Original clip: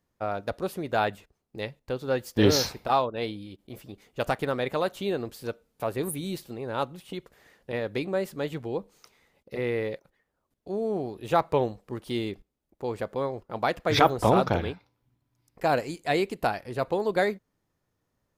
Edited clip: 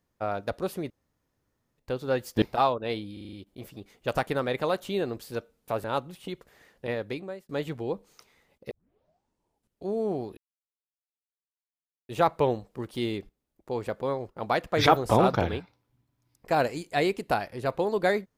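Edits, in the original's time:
0.90–1.78 s: room tone
2.42–2.74 s: delete
3.45 s: stutter 0.04 s, 6 plays
5.96–6.69 s: delete
7.76–8.34 s: fade out
9.56 s: tape start 1.15 s
11.22 s: insert silence 1.72 s

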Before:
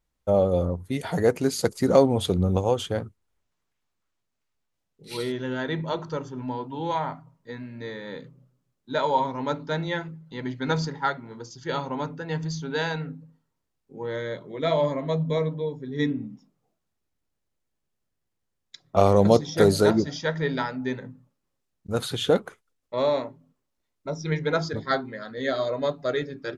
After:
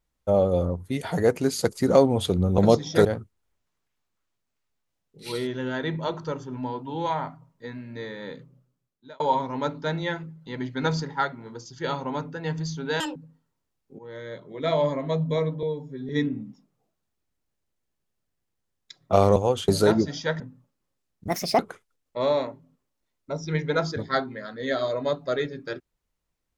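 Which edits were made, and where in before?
2.58–2.90 s: swap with 19.20–19.67 s
7.99–9.05 s: fade out equal-power
12.85–13.15 s: speed 192%
13.98–14.77 s: fade in, from -13 dB
15.62–15.93 s: stretch 1.5×
20.39–21.03 s: delete
21.91–22.36 s: speed 146%

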